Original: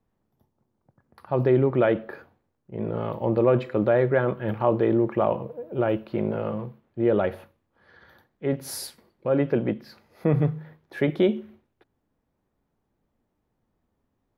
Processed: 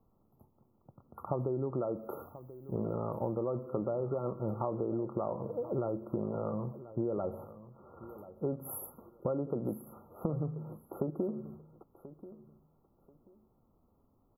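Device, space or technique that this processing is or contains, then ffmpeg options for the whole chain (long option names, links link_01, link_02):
serial compression, leveller first: -filter_complex "[0:a]acompressor=threshold=-23dB:ratio=2,acompressor=threshold=-36dB:ratio=6,asettb=1/sr,asplit=3[link_01][link_02][link_03];[link_01]atrim=end=1.874[link_04];[link_02]atrim=start=1.87:end=2.96,asetpts=PTS-STARTPTS,afade=type=in:duration=0.004:curve=qsin,afade=type=out:start_time=1.086:duration=0.004:curve=qsin,aemphasis=mode=production:type=75kf[link_05];[link_03]atrim=start=2.956[link_06];[link_04][link_05]acrossfade=duration=0.004:curve1=hsin:curve2=qsin[link_07];[link_07][link_06]acrossfade=duration=0.004:curve1=qsin:curve2=hsin,aecho=1:1:1035|2070:0.158|0.0365,afftfilt=real='re*(1-between(b*sr/4096,1400,11000))':imag='im*(1-between(b*sr/4096,1400,11000))':win_size=4096:overlap=0.75,volume=4.5dB"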